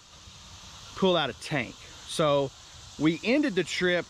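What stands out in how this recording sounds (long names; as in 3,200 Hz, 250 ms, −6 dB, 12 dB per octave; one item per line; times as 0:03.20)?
background noise floor −50 dBFS
spectral slope −3.5 dB per octave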